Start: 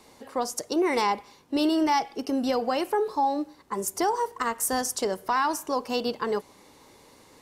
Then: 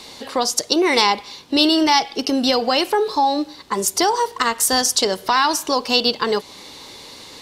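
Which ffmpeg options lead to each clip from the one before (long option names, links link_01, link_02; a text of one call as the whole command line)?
ffmpeg -i in.wav -filter_complex "[0:a]equalizer=frequency=3900:width_type=o:width=1.3:gain=13.5,asplit=2[link_01][link_02];[link_02]acompressor=threshold=-32dB:ratio=6,volume=0dB[link_03];[link_01][link_03]amix=inputs=2:normalize=0,volume=4dB" out.wav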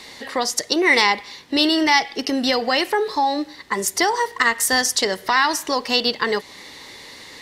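ffmpeg -i in.wav -af "equalizer=frequency=1900:width=4.5:gain=13.5,volume=-2.5dB" out.wav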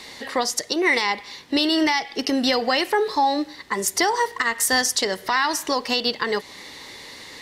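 ffmpeg -i in.wav -af "alimiter=limit=-9.5dB:level=0:latency=1:release=227" out.wav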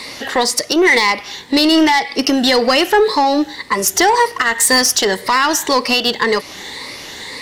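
ffmpeg -i in.wav -af "afftfilt=real='re*pow(10,7/40*sin(2*PI*(0.96*log(max(b,1)*sr/1024/100)/log(2)-(1.9)*(pts-256)/sr)))':imag='im*pow(10,7/40*sin(2*PI*(0.96*log(max(b,1)*sr/1024/100)/log(2)-(1.9)*(pts-256)/sr)))':win_size=1024:overlap=0.75,acontrast=84,aeval=exprs='0.668*(cos(1*acos(clip(val(0)/0.668,-1,1)))-cos(1*PI/2))+0.0376*(cos(5*acos(clip(val(0)/0.668,-1,1)))-cos(5*PI/2))':channel_layout=same" out.wav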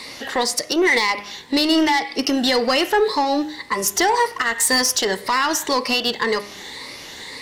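ffmpeg -i in.wav -af "bandreject=frequency=102:width_type=h:width=4,bandreject=frequency=204:width_type=h:width=4,bandreject=frequency=306:width_type=h:width=4,bandreject=frequency=408:width_type=h:width=4,bandreject=frequency=510:width_type=h:width=4,bandreject=frequency=612:width_type=h:width=4,bandreject=frequency=714:width_type=h:width=4,bandreject=frequency=816:width_type=h:width=4,bandreject=frequency=918:width_type=h:width=4,bandreject=frequency=1020:width_type=h:width=4,bandreject=frequency=1122:width_type=h:width=4,bandreject=frequency=1224:width_type=h:width=4,bandreject=frequency=1326:width_type=h:width=4,bandreject=frequency=1428:width_type=h:width=4,bandreject=frequency=1530:width_type=h:width=4,bandreject=frequency=1632:width_type=h:width=4,bandreject=frequency=1734:width_type=h:width=4,bandreject=frequency=1836:width_type=h:width=4,bandreject=frequency=1938:width_type=h:width=4,bandreject=frequency=2040:width_type=h:width=4,bandreject=frequency=2142:width_type=h:width=4,bandreject=frequency=2244:width_type=h:width=4,bandreject=frequency=2346:width_type=h:width=4,bandreject=frequency=2448:width_type=h:width=4,bandreject=frequency=2550:width_type=h:width=4,bandreject=frequency=2652:width_type=h:width=4,bandreject=frequency=2754:width_type=h:width=4,volume=-5dB" out.wav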